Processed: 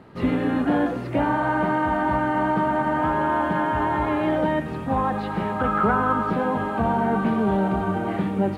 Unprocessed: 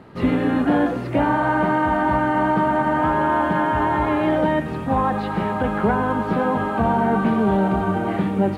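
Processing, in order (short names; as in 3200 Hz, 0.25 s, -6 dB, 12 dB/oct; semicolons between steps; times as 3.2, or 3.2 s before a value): 5.59–6.3 bell 1300 Hz +14.5 dB 0.26 oct; gain -3 dB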